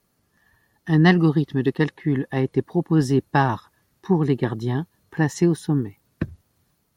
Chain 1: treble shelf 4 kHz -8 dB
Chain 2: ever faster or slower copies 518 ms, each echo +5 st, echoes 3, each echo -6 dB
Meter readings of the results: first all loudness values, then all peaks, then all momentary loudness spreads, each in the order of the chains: -21.5 LUFS, -21.0 LUFS; -5.0 dBFS, -5.0 dBFS; 15 LU, 14 LU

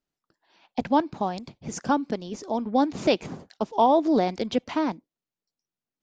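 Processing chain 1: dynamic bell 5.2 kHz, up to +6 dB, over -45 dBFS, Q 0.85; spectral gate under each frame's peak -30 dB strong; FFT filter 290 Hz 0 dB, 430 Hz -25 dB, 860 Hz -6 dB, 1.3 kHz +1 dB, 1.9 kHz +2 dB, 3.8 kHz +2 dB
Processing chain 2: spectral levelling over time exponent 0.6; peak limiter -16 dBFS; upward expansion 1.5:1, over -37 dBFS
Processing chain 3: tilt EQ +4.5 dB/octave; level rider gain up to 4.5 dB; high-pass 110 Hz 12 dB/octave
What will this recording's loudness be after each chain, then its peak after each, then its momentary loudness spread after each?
-29.0 LUFS, -29.0 LUFS, -23.5 LUFS; -8.5 dBFS, -16.0 dBFS, -2.5 dBFS; 10 LU, 9 LU, 14 LU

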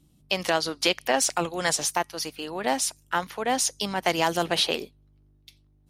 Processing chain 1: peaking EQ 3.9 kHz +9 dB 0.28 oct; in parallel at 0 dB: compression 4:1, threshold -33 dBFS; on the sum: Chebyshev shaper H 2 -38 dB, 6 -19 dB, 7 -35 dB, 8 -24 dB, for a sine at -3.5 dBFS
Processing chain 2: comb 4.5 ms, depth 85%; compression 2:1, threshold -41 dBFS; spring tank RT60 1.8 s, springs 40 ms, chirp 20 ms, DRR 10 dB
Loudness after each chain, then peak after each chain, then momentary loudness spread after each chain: -23.0 LUFS, -35.0 LUFS; -3.0 dBFS, -17.5 dBFS; 9 LU, 16 LU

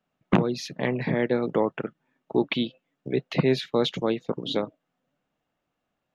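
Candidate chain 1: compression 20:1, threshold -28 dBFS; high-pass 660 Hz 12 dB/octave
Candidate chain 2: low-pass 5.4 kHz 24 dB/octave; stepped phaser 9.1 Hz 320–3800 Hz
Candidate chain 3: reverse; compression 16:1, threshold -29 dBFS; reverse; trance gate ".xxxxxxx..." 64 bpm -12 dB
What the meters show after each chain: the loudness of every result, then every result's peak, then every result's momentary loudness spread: -40.0 LUFS, -30.0 LUFS, -36.0 LUFS; -17.5 dBFS, -10.0 dBFS, -19.0 dBFS; 10 LU, 9 LU, 16 LU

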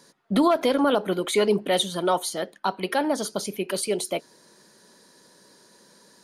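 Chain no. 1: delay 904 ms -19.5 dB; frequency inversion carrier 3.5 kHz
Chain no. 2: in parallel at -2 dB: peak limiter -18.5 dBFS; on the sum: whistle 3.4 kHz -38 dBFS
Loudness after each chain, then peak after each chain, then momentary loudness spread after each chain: -21.5 LUFS, -21.0 LUFS; -9.0 dBFS, -7.5 dBFS; 10 LU, 19 LU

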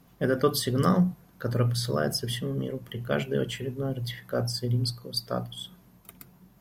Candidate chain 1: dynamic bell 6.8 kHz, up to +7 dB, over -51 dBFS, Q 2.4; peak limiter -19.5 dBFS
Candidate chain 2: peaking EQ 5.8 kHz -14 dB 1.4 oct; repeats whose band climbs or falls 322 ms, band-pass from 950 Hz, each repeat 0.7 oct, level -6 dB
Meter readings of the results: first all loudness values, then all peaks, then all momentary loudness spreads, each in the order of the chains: -31.0 LUFS, -29.0 LUFS; -19.5 dBFS, -10.5 dBFS; 10 LU, 10 LU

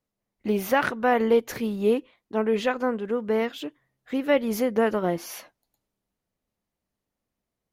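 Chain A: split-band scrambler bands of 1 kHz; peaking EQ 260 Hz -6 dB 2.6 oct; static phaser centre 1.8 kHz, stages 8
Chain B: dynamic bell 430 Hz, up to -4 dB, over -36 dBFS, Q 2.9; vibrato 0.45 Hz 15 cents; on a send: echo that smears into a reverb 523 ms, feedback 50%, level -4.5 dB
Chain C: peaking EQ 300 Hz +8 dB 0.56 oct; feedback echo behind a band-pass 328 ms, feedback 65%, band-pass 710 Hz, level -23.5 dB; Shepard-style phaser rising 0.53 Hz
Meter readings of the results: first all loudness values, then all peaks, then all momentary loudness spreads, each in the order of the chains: -27.0 LUFS, -26.0 LUFS, -24.5 LUFS; -11.5 dBFS, -8.5 dBFS, -8.5 dBFS; 15 LU, 14 LU, 10 LU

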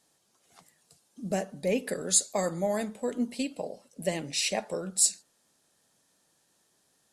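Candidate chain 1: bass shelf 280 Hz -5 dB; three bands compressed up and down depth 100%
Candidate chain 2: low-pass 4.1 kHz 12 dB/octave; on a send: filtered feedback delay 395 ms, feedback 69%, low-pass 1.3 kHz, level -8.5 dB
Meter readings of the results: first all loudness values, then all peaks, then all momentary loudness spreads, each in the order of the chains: -34.0 LUFS, -32.0 LUFS; -16.0 dBFS, -16.0 dBFS; 12 LU, 17 LU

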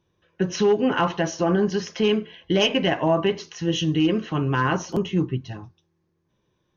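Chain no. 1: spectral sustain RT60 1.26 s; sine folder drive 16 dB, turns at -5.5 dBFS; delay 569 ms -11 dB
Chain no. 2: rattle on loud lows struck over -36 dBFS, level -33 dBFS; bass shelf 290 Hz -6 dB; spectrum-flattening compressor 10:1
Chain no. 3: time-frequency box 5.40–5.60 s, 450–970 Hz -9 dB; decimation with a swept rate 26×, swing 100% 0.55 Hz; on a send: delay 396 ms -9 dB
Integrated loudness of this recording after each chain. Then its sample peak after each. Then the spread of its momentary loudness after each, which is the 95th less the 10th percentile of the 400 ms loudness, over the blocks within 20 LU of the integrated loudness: -8.0 LUFS, -32.0 LUFS, -22.5 LUFS; -2.5 dBFS, -10.5 dBFS, -10.0 dBFS; 8 LU, 4 LU, 8 LU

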